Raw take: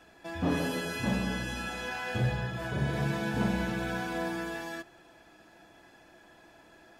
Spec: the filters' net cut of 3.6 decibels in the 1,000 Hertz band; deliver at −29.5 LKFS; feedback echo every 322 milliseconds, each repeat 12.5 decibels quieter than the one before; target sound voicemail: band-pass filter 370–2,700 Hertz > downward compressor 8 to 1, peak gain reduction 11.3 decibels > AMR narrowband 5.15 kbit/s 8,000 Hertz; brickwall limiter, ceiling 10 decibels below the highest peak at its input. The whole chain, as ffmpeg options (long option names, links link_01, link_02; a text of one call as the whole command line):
ffmpeg -i in.wav -af "equalizer=frequency=1000:width_type=o:gain=-4.5,alimiter=level_in=4dB:limit=-24dB:level=0:latency=1,volume=-4dB,highpass=370,lowpass=2700,aecho=1:1:322|644|966:0.237|0.0569|0.0137,acompressor=threshold=-46dB:ratio=8,volume=23.5dB" -ar 8000 -c:a libopencore_amrnb -b:a 5150 out.amr